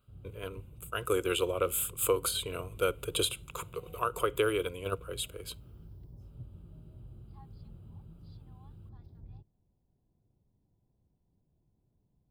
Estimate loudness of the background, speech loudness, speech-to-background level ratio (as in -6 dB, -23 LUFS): -51.5 LUFS, -32.5 LUFS, 19.0 dB